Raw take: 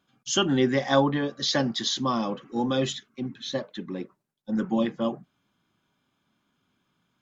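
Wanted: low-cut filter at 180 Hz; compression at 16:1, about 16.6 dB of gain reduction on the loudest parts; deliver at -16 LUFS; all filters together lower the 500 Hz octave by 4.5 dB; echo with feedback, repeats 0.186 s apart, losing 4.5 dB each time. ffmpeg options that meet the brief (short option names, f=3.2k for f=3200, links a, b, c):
-af "highpass=180,equalizer=f=500:t=o:g=-5.5,acompressor=threshold=-36dB:ratio=16,aecho=1:1:186|372|558|744|930|1116|1302|1488|1674:0.596|0.357|0.214|0.129|0.0772|0.0463|0.0278|0.0167|0.01,volume=23dB"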